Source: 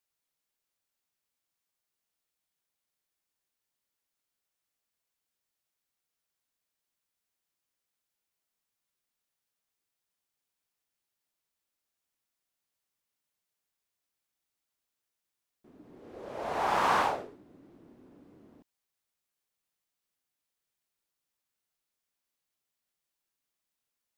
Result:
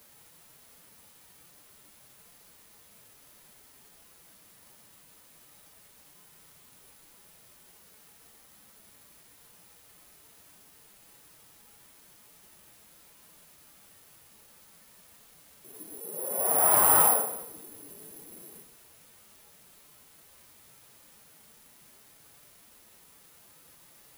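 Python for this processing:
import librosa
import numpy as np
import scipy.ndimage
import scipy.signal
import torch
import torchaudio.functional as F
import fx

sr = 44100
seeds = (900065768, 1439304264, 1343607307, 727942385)

p1 = fx.highpass(x, sr, hz=250.0, slope=6)
p2 = 10.0 ** (-23.5 / 20.0) * np.tanh(p1 / 10.0 ** (-23.5 / 20.0))
p3 = fx.quant_dither(p2, sr, seeds[0], bits=8, dither='triangular')
p4 = p2 + (p3 * 10.0 ** (-5.5 / 20.0))
p5 = fx.low_shelf(p4, sr, hz=340.0, db=3.0)
p6 = p5 + fx.echo_single(p5, sr, ms=286, db=-22.5, dry=0)
p7 = fx.pitch_keep_formants(p6, sr, semitones=9.0)
p8 = fx.high_shelf(p7, sr, hz=2400.0, db=-11.0)
p9 = (np.kron(p8[::4], np.eye(4)[0]) * 4)[:len(p8)]
y = fx.rev_double_slope(p9, sr, seeds[1], early_s=0.71, late_s=1.9, knee_db=-25, drr_db=4.0)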